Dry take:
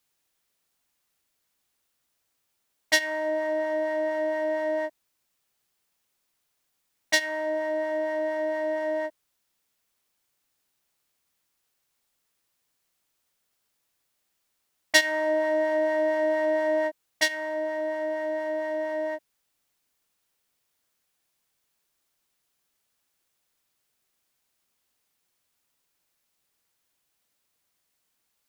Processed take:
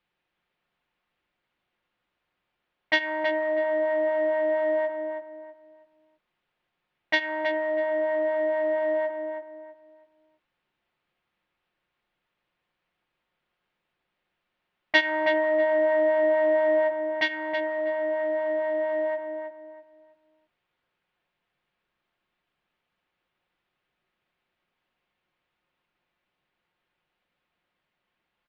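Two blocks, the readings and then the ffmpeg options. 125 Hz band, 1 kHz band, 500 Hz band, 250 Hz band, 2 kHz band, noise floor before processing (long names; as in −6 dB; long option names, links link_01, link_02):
can't be measured, +2.0 dB, +3.0 dB, 0.0 dB, +1.0 dB, −77 dBFS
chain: -filter_complex "[0:a]lowpass=frequency=3100:width=0.5412,lowpass=frequency=3100:width=1.3066,aecho=1:1:5.6:0.33,asplit=2[link_01][link_02];[link_02]adelay=323,lowpass=frequency=2100:poles=1,volume=-5.5dB,asplit=2[link_03][link_04];[link_04]adelay=323,lowpass=frequency=2100:poles=1,volume=0.31,asplit=2[link_05][link_06];[link_06]adelay=323,lowpass=frequency=2100:poles=1,volume=0.31,asplit=2[link_07][link_08];[link_08]adelay=323,lowpass=frequency=2100:poles=1,volume=0.31[link_09];[link_01][link_03][link_05][link_07][link_09]amix=inputs=5:normalize=0,volume=2.5dB"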